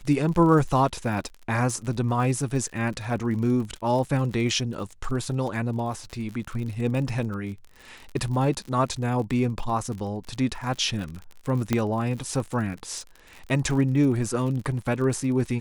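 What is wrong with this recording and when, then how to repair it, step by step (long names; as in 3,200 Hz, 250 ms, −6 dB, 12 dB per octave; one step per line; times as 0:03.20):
surface crackle 52 per second −33 dBFS
0:11.73: click −9 dBFS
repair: click removal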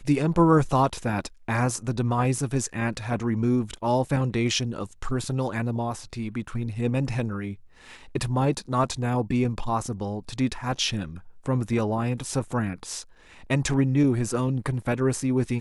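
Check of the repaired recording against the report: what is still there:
0:11.73: click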